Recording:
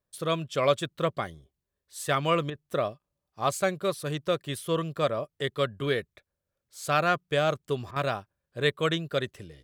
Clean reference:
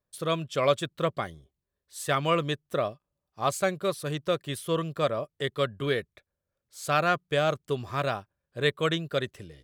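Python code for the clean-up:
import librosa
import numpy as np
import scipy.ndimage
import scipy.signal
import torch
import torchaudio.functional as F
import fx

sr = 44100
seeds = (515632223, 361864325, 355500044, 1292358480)

y = fx.fix_interpolate(x, sr, at_s=(2.5, 7.91), length_ms=49.0)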